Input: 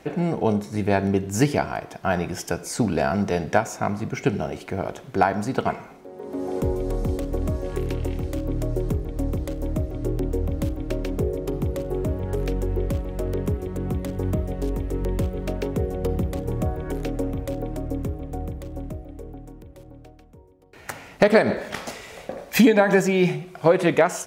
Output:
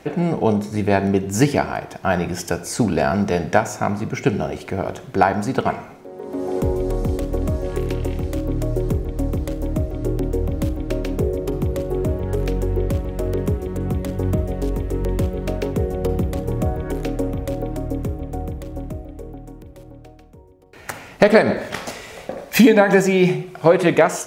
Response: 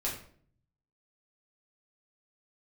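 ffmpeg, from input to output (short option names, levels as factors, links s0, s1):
-filter_complex "[0:a]asplit=2[s0][s1];[1:a]atrim=start_sample=2205,adelay=45[s2];[s1][s2]afir=irnorm=-1:irlink=0,volume=0.0944[s3];[s0][s3]amix=inputs=2:normalize=0,volume=1.5"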